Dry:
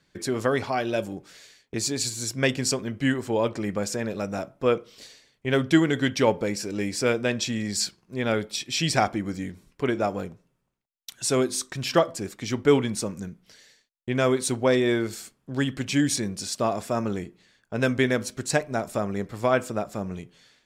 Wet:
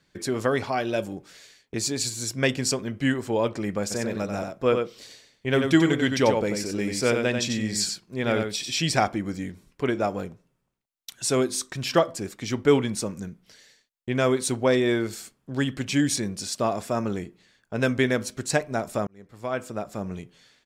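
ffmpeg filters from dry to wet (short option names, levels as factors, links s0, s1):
-filter_complex "[0:a]asplit=3[s0][s1][s2];[s0]afade=t=out:st=3.9:d=0.02[s3];[s1]aecho=1:1:92:0.531,afade=t=in:st=3.9:d=0.02,afade=t=out:st=8.73:d=0.02[s4];[s2]afade=t=in:st=8.73:d=0.02[s5];[s3][s4][s5]amix=inputs=3:normalize=0,asplit=2[s6][s7];[s6]atrim=end=19.07,asetpts=PTS-STARTPTS,afade=t=out:st=19.066:d=0.004:c=hsin[s8];[s7]atrim=start=19.07,asetpts=PTS-STARTPTS,afade=t=in:d=1.03[s9];[s8][s9]concat=n=2:v=0:a=1"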